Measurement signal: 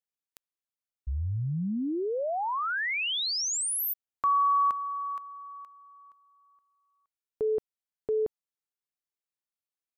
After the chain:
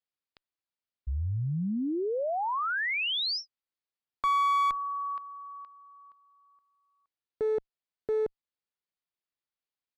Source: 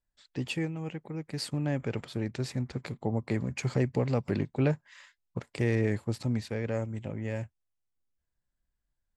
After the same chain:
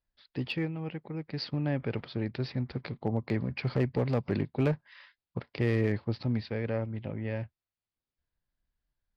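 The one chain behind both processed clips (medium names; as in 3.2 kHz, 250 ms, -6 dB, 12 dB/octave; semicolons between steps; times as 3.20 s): resampled via 11.025 kHz; one-sided clip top -25.5 dBFS, bottom -17.5 dBFS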